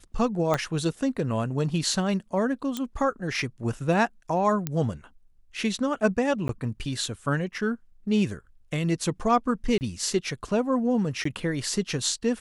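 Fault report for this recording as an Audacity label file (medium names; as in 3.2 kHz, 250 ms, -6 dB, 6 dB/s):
0.540000	0.540000	pop -11 dBFS
2.770000	2.770000	pop -15 dBFS
4.670000	4.670000	pop -12 dBFS
6.480000	6.490000	dropout
9.780000	9.810000	dropout 29 ms
11.240000	11.250000	dropout 14 ms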